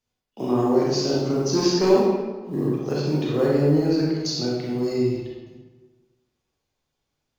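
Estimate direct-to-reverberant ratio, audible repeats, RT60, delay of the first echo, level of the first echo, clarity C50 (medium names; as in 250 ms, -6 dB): -5.0 dB, no echo, 1.4 s, no echo, no echo, -1.5 dB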